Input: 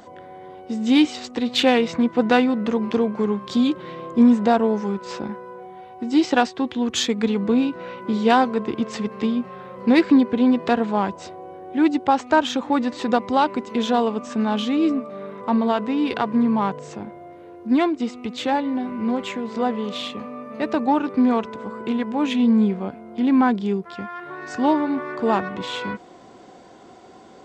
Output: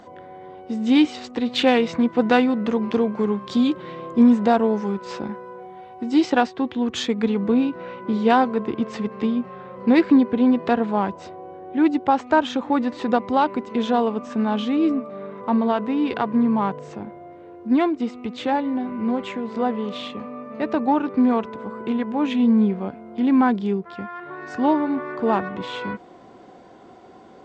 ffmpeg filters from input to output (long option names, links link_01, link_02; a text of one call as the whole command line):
ffmpeg -i in.wav -af "asetnsamples=nb_out_samples=441:pad=0,asendcmd='1.67 lowpass f 5600;6.3 lowpass f 2600;22.77 lowpass f 3800;23.71 lowpass f 2500',lowpass=frequency=3600:poles=1" out.wav